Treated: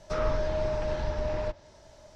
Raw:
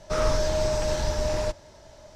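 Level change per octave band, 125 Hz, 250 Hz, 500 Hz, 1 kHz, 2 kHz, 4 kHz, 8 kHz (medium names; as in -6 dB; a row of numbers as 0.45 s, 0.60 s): -4.0 dB, -4.0 dB, -4.0 dB, -4.0 dB, -4.5 dB, -11.5 dB, -17.5 dB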